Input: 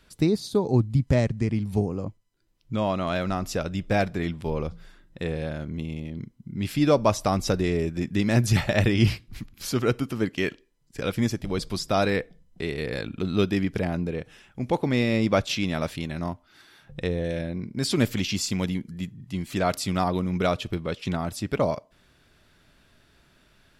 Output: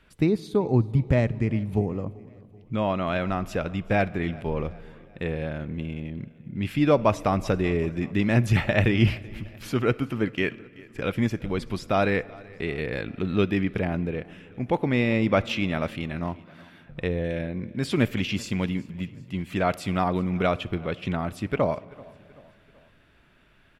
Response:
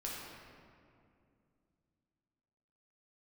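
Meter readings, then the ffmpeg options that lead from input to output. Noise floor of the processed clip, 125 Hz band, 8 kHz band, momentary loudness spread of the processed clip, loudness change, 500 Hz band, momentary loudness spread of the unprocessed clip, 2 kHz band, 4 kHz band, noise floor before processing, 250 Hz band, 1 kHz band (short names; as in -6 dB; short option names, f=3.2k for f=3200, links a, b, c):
-57 dBFS, 0.0 dB, -10.0 dB, 13 LU, 0.0 dB, 0.0 dB, 12 LU, +2.0 dB, -4.0 dB, -61 dBFS, 0.0 dB, +0.5 dB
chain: -filter_complex "[0:a]highshelf=f=3.6k:t=q:w=1.5:g=-8.5,aecho=1:1:383|766|1149:0.0708|0.0347|0.017,asplit=2[a][b];[1:a]atrim=start_sample=2205,adelay=60[c];[b][c]afir=irnorm=-1:irlink=0,volume=-22dB[d];[a][d]amix=inputs=2:normalize=0"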